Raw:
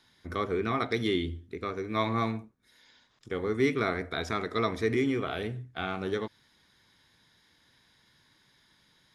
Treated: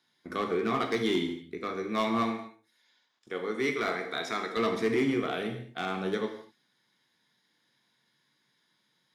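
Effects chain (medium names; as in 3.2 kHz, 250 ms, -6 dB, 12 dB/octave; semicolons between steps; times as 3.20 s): high-pass 140 Hz 24 dB/octave; gate -55 dBFS, range -9 dB; 2.23–4.57 s: bass shelf 260 Hz -11.5 dB; hard clipper -22 dBFS, distortion -18 dB; gated-style reverb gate 260 ms falling, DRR 4.5 dB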